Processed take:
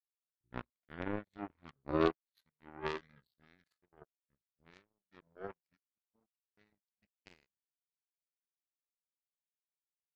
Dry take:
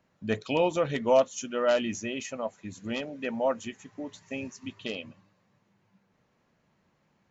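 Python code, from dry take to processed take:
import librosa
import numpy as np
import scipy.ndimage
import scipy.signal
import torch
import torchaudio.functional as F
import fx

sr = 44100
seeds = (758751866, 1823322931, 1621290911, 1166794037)

y = fx.speed_glide(x, sr, from_pct=54, to_pct=90)
y = fx.power_curve(y, sr, exponent=3.0)
y = y * 10.0 ** (-2.0 / 20.0)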